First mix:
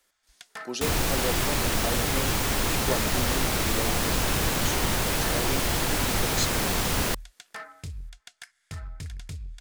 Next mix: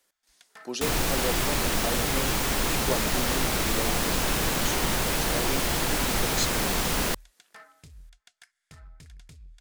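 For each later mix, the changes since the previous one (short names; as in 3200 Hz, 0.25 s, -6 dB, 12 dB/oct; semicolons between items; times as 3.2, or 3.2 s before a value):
first sound -9.5 dB; master: add bell 94 Hz -14.5 dB 0.25 oct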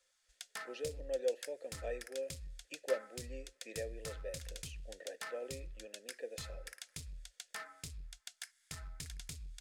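speech: add vowel filter e; first sound: add high shelf 2800 Hz +12 dB; second sound: muted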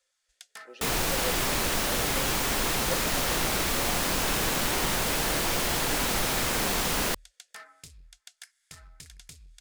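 second sound: unmuted; master: add low shelf 270 Hz -4.5 dB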